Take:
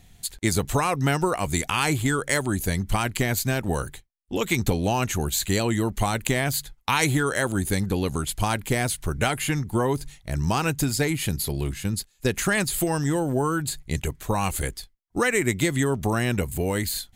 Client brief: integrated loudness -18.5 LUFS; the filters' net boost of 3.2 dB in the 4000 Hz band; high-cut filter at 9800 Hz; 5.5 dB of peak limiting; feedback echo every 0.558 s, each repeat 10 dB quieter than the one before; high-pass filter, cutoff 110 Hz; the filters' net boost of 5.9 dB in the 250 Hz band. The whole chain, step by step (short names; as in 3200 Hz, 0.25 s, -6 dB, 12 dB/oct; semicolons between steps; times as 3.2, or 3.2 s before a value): HPF 110 Hz; LPF 9800 Hz; bell 250 Hz +8 dB; bell 4000 Hz +4 dB; limiter -10 dBFS; feedback echo 0.558 s, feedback 32%, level -10 dB; gain +4.5 dB